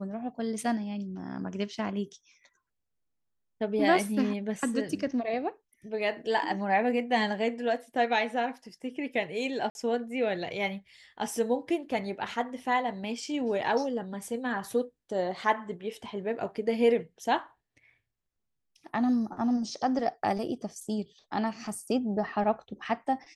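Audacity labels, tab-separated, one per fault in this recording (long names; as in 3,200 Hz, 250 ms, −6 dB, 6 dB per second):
9.700000	9.750000	drop-out 51 ms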